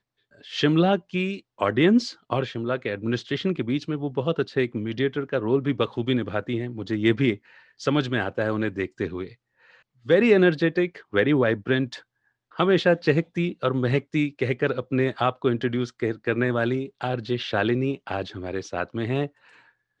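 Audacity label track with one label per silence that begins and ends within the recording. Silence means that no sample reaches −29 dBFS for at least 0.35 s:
7.350000	7.820000	silence
9.240000	10.090000	silence
11.960000	12.590000	silence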